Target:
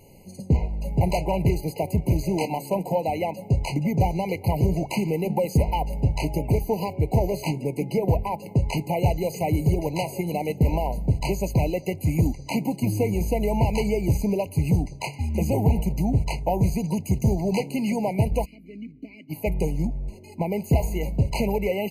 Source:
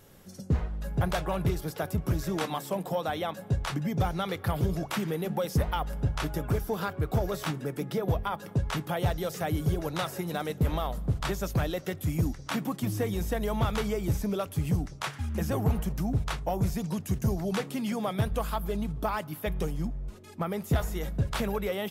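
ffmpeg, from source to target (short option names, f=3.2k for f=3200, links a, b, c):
-filter_complex "[0:a]aeval=exprs='0.119*(cos(1*acos(clip(val(0)/0.119,-1,1)))-cos(1*PI/2))+0.00188*(cos(5*acos(clip(val(0)/0.119,-1,1)))-cos(5*PI/2))+0.00376*(cos(7*acos(clip(val(0)/0.119,-1,1)))-cos(7*PI/2))':c=same,asplit=3[a][b][c];[a]afade=t=out:st=18.44:d=0.02[d];[b]asplit=3[e][f][g];[e]bandpass=f=270:t=q:w=8,volume=0dB[h];[f]bandpass=f=2.29k:t=q:w=8,volume=-6dB[i];[g]bandpass=f=3.01k:t=q:w=8,volume=-9dB[j];[h][i][j]amix=inputs=3:normalize=0,afade=t=in:st=18.44:d=0.02,afade=t=out:st=19.29:d=0.02[k];[c]afade=t=in:st=19.29:d=0.02[l];[d][k][l]amix=inputs=3:normalize=0,afftfilt=real='re*eq(mod(floor(b*sr/1024/1000),2),0)':imag='im*eq(mod(floor(b*sr/1024/1000),2),0)':win_size=1024:overlap=0.75,volume=6.5dB"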